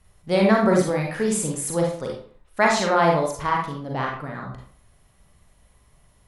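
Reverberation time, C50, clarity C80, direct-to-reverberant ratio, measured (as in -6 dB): 0.50 s, 2.5 dB, 7.5 dB, -1.0 dB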